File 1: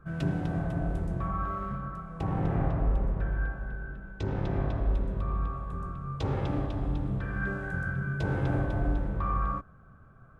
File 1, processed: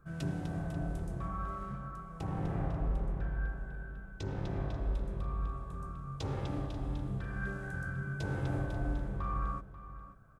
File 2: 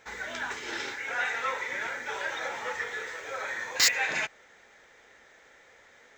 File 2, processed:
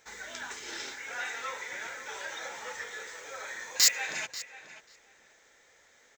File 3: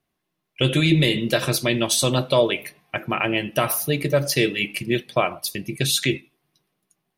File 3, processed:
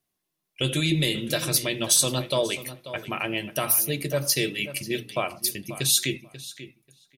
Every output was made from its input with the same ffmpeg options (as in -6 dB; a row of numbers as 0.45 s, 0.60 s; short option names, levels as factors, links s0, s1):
-filter_complex "[0:a]bass=f=250:g=1,treble=f=4000:g=11,bandreject=f=60:t=h:w=6,bandreject=f=120:t=h:w=6,bandreject=f=180:t=h:w=6,bandreject=f=240:t=h:w=6,asplit=2[s0][s1];[s1]adelay=538,lowpass=f=4100:p=1,volume=0.211,asplit=2[s2][s3];[s3]adelay=538,lowpass=f=4100:p=1,volume=0.15[s4];[s2][s4]amix=inputs=2:normalize=0[s5];[s0][s5]amix=inputs=2:normalize=0,volume=0.447"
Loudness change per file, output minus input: -6.0 LU, -2.0 LU, -3.0 LU